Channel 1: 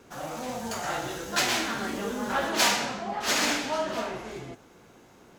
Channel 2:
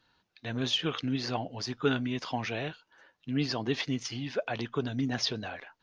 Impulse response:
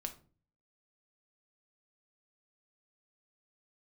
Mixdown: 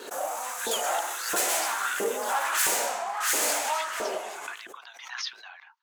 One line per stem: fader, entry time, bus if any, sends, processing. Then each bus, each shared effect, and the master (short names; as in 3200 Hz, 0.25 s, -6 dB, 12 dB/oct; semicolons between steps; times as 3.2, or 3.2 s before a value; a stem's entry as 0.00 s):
-0.5 dB, 0.00 s, no send, echo send -10 dB, hard clip -27 dBFS, distortion -8 dB; resonant high shelf 6200 Hz +10 dB, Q 1.5; gate -49 dBFS, range -32 dB
-15.5 dB, 0.00 s, no send, no echo send, steep high-pass 870 Hz 48 dB/oct; AGC gain up to 11 dB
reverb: off
echo: echo 0.133 s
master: LFO high-pass saw up 1.5 Hz 380–1600 Hz; backwards sustainer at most 63 dB/s